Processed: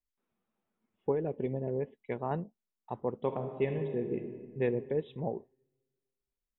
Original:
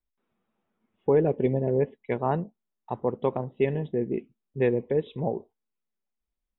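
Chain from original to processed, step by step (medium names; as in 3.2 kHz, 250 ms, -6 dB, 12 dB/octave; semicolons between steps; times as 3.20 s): 1.11–2.31 s: compression 3:1, threshold -23 dBFS, peak gain reduction 5.5 dB; 3.16–4.62 s: reverb throw, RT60 1.6 s, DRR 5.5 dB; trim -6.5 dB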